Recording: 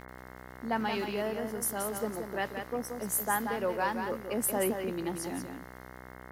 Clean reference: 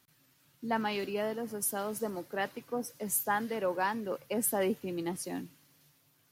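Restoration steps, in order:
click removal
hum removal 63.1 Hz, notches 34
echo removal 178 ms −6.5 dB

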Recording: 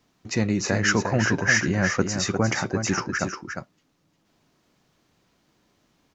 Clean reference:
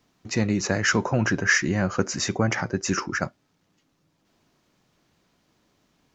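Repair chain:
echo removal 353 ms −7 dB

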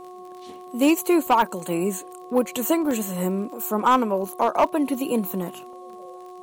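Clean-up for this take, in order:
clipped peaks rebuilt −11 dBFS
click removal
hum removal 364 Hz, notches 3
repair the gap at 0:01.27/0:02.91/0:05.73, 1.9 ms

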